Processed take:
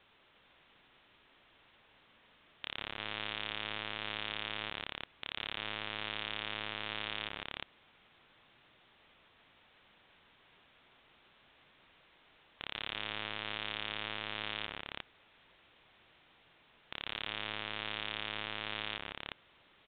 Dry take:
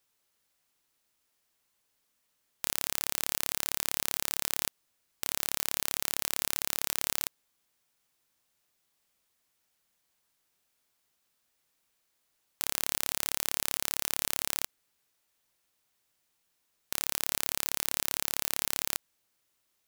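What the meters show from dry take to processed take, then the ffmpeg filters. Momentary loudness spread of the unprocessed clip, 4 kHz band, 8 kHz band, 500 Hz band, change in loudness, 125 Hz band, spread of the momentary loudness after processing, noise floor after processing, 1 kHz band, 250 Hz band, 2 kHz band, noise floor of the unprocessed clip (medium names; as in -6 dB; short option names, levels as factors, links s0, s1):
4 LU, -1.5 dB, under -40 dB, -1.5 dB, -8.5 dB, -1.5 dB, 7 LU, -67 dBFS, -1.0 dB, -1.5 dB, +0.5 dB, -77 dBFS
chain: -af "alimiter=limit=0.2:level=0:latency=1:release=47,aecho=1:1:150|358:0.251|0.596,acontrast=35,aresample=8000,asoftclip=type=hard:threshold=0.015,aresample=44100,volume=3.76"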